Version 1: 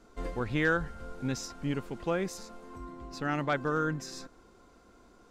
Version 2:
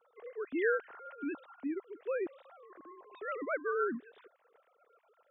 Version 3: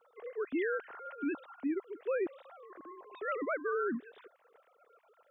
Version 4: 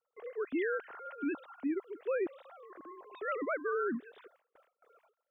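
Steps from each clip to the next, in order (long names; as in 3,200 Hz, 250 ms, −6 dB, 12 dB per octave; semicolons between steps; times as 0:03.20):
three sine waves on the formant tracks; rotating-speaker cabinet horn 0.65 Hz, later 8 Hz, at 0:02.47; level −2 dB
brickwall limiter −29 dBFS, peak gain reduction 9 dB; level +3 dB
noise gate with hold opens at −56 dBFS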